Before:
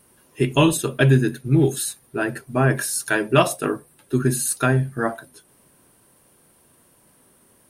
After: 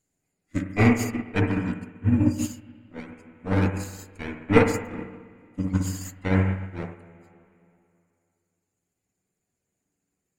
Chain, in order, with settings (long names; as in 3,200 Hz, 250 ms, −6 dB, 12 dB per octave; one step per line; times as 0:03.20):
lower of the sound and its delayed copy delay 0.31 ms
reverb reduction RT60 2 s
spring reverb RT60 2 s, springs 34/39/47 ms, chirp 50 ms, DRR −1.5 dB
wrong playback speed 45 rpm record played at 33 rpm
expander for the loud parts 2.5 to 1, over −25 dBFS